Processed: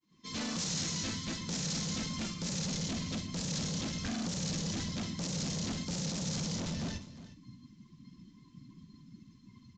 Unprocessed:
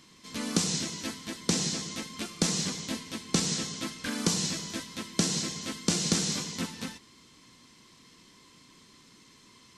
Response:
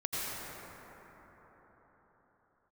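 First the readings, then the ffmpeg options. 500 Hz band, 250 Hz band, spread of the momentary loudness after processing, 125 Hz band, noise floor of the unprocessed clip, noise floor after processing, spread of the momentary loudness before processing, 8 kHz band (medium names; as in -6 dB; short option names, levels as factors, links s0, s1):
-6.5 dB, -3.5 dB, 21 LU, -0.5 dB, -58 dBFS, -60 dBFS, 9 LU, -7.0 dB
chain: -filter_complex "[0:a]agate=range=0.0224:threshold=0.00224:ratio=3:detection=peak,afftdn=nr=16:nf=-52,asubboost=boost=11:cutoff=160,dynaudnorm=f=100:g=3:m=3.35,alimiter=limit=0.237:level=0:latency=1:release=25,volume=22.4,asoftclip=hard,volume=0.0447,asplit=2[s0][s1];[s1]adelay=49,volume=0.282[s2];[s0][s2]amix=inputs=2:normalize=0,asplit=2[s3][s4];[s4]aecho=0:1:358:0.158[s5];[s3][s5]amix=inputs=2:normalize=0,aresample=16000,aresample=44100,adynamicequalizer=threshold=0.00562:dfrequency=3500:dqfactor=0.7:tfrequency=3500:tqfactor=0.7:attack=5:release=100:ratio=0.375:range=2:mode=boostabove:tftype=highshelf,volume=0.398"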